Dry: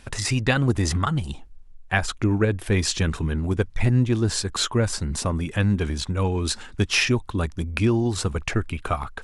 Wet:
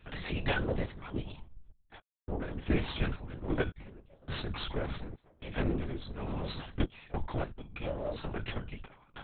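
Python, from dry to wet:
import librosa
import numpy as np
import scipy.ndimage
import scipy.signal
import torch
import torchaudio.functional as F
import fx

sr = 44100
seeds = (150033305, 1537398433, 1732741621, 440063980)

y = fx.lower_of_two(x, sr, delay_ms=2.1)
y = fx.comb_fb(y, sr, f0_hz=300.0, decay_s=0.22, harmonics='all', damping=0.0, mix_pct=80)
y = fx.tremolo_random(y, sr, seeds[0], hz=3.5, depth_pct=100)
y = y + 0.43 * np.pad(y, (int(3.6 * sr / 1000.0), 0))[:len(y)]
y = fx.lpc_vocoder(y, sr, seeds[1], excitation='whisper', order=8)
y = y * librosa.db_to_amplitude(3.0)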